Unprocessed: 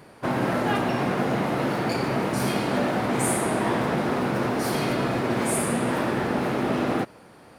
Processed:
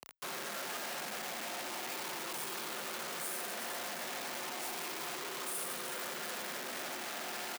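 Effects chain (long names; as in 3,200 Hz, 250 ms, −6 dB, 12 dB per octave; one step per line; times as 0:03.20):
rippled gain that drifts along the octave scale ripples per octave 0.63, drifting +0.36 Hz, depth 6 dB
spring reverb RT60 3.1 s, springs 49/57 ms, chirp 20 ms, DRR 7.5 dB
downward compressor 12 to 1, threshold −32 dBFS, peak gain reduction 14.5 dB
comb filter 5.8 ms, depth 39%
repeating echo 369 ms, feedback 44%, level −11 dB
log-companded quantiser 2 bits
frequency shifter +23 Hz
soft clipping −35.5 dBFS, distortion −6 dB
high-pass filter 1,000 Hz 6 dB per octave
high-shelf EQ 11,000 Hz +3 dB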